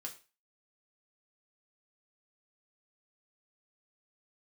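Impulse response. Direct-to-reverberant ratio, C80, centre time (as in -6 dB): 0.5 dB, 17.5 dB, 12 ms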